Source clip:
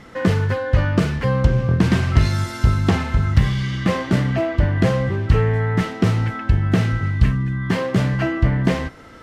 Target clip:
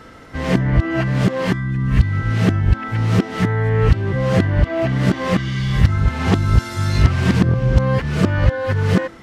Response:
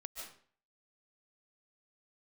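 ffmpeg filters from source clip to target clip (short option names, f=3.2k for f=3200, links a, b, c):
-af "areverse,bandreject=f=335.2:t=h:w=4,bandreject=f=670.4:t=h:w=4,bandreject=f=1.0056k:t=h:w=4,bandreject=f=1.3408k:t=h:w=4,bandreject=f=1.676k:t=h:w=4,bandreject=f=2.0112k:t=h:w=4,bandreject=f=2.3464k:t=h:w=4,bandreject=f=2.6816k:t=h:w=4,bandreject=f=3.0168k:t=h:w=4,bandreject=f=3.352k:t=h:w=4,bandreject=f=3.6872k:t=h:w=4,bandreject=f=4.0224k:t=h:w=4,bandreject=f=4.3576k:t=h:w=4,bandreject=f=4.6928k:t=h:w=4,bandreject=f=5.028k:t=h:w=4,bandreject=f=5.3632k:t=h:w=4,bandreject=f=5.6984k:t=h:w=4,bandreject=f=6.0336k:t=h:w=4,bandreject=f=6.3688k:t=h:w=4,bandreject=f=6.704k:t=h:w=4,bandreject=f=7.0392k:t=h:w=4,bandreject=f=7.3744k:t=h:w=4,bandreject=f=7.7096k:t=h:w=4,bandreject=f=8.0448k:t=h:w=4,bandreject=f=8.38k:t=h:w=4,volume=1.5dB"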